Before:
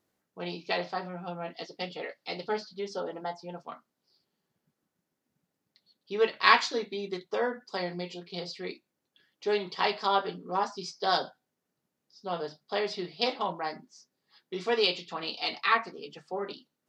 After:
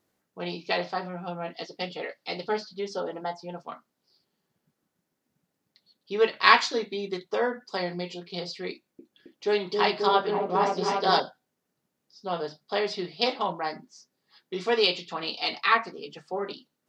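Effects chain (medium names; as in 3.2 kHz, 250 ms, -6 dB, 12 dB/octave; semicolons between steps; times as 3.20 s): 8.72–11.20 s: delay with an opening low-pass 268 ms, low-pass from 400 Hz, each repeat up 1 oct, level 0 dB; trim +3 dB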